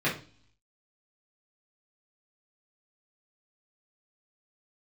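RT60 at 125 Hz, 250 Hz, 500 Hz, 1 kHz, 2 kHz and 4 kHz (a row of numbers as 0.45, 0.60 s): 0.80, 0.65, 0.40, 0.40, 0.40, 0.60 s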